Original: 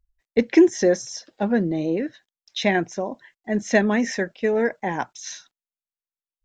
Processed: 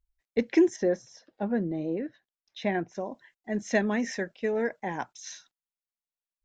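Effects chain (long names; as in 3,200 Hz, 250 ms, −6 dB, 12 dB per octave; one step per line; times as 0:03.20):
0:00.76–0:02.95: low-pass filter 1,600 Hz 6 dB per octave
level −7 dB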